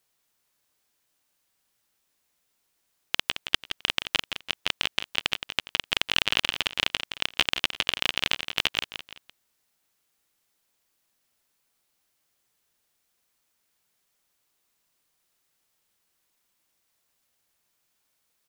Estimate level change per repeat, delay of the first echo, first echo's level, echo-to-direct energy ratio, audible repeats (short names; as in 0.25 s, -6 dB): -8.5 dB, 0.169 s, -9.0 dB, -8.5 dB, 3